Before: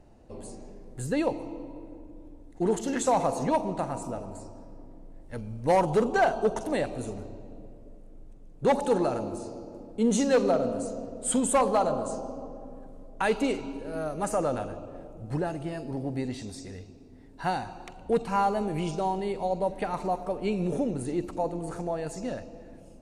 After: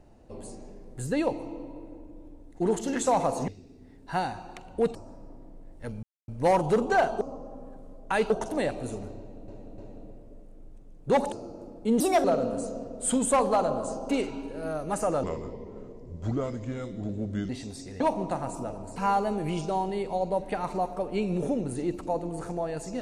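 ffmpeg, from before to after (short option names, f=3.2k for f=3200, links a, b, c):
-filter_complex "[0:a]asplit=16[a][b][c][d][e][f][g][h][i][j][k][l][m][n][o][p];[a]atrim=end=3.482[q];[b]atrim=start=16.788:end=18.262[r];[c]atrim=start=4.438:end=5.52,asetpts=PTS-STARTPTS,afade=t=out:st=1.078:d=0.004:c=hsin,apad=pad_dur=0.25[s];[d]atrim=start=5.52:end=6.452,asetpts=PTS-STARTPTS,afade=t=in:d=0.004:c=hsin[t];[e]atrim=start=12.308:end=13.402[u];[f]atrim=start=6.448:end=7.632[v];[g]atrim=start=7.328:end=7.632[w];[h]atrim=start=7.328:end=8.872[x];[i]atrim=start=9.448:end=10.134[y];[j]atrim=start=10.13:end=10.46,asetpts=PTS-STARTPTS,asetrate=59976,aresample=44100[z];[k]atrim=start=10.456:end=12.312[aa];[l]atrim=start=13.398:end=14.544[ab];[m]atrim=start=14.54:end=16.28,asetpts=PTS-STARTPTS,asetrate=33957,aresample=44100[ac];[n]atrim=start=16.276:end=16.792[ad];[o]atrim=start=3.478:end=4.442[ae];[p]atrim=start=18.258[af];[q][r]acrossfade=d=0.004:c1=hsin:c2=hsin[ag];[s][t]concat=n=2:v=0:a=1[ah];[ag][ah]acrossfade=d=0.004:c1=hsin:c2=hsin[ai];[ai][u]acrossfade=d=0.004:c1=hsin:c2=hsin[aj];[aj][v]acrossfade=d=0.004:c1=hsin:c2=hsin[ak];[ak][w]acrossfade=d=0.004:c1=hsin:c2=hsin[al];[al][x]acrossfade=d=0.004:c1=hsin:c2=hsin[am];[am][y]acrossfade=d=0.004:c1=hsin:c2=hsin[an];[an][z]acrossfade=d=0.004:c1=hsin:c2=hsin[ao];[ao][aa]acrossfade=d=0.004:c1=hsin:c2=hsin[ap];[ap][ab]acrossfade=d=0.004:c1=hsin:c2=hsin[aq];[aq][ac]acrossfade=d=0.004:c1=hsin:c2=hsin[ar];[ar][ad]acrossfade=d=0.004:c1=hsin:c2=hsin[as];[as][ae]acrossfade=d=0.004:c1=hsin:c2=hsin[at];[at][af]acrossfade=d=0.004:c1=hsin:c2=hsin"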